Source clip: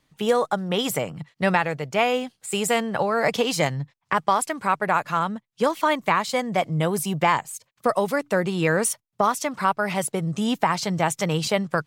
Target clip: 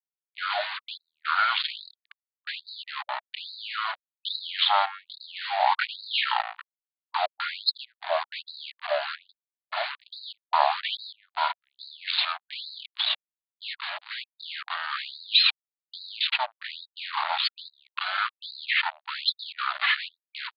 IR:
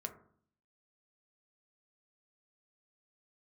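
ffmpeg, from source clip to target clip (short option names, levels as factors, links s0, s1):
-af "highpass=f=370:w=0.5412,highpass=f=370:w=1.3066,areverse,acompressor=mode=upward:threshold=0.0708:ratio=2.5,areverse,asetrate=33038,aresample=44100,atempo=1.33484,aresample=16000,acrusher=bits=4:mix=0:aa=0.5,aresample=44100,asetrate=25442,aresample=44100,afftfilt=real='re*gte(b*sr/1024,580*pow(3800/580,0.5+0.5*sin(2*PI*1.2*pts/sr)))':imag='im*gte(b*sr/1024,580*pow(3800/580,0.5+0.5*sin(2*PI*1.2*pts/sr)))':win_size=1024:overlap=0.75,volume=1.88"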